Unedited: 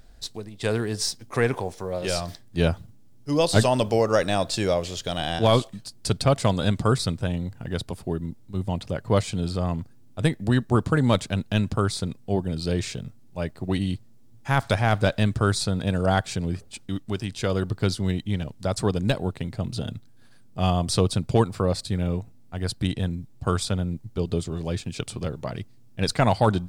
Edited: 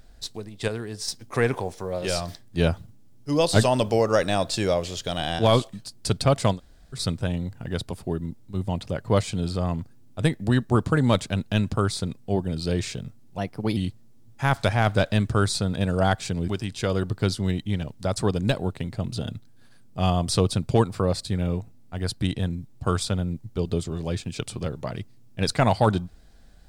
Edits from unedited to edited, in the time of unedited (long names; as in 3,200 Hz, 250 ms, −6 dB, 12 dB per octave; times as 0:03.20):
0:00.68–0:01.08: clip gain −6.5 dB
0:06.55–0:06.97: fill with room tone, crossfade 0.10 s
0:13.38–0:13.83: play speed 116%
0:16.54–0:17.08: remove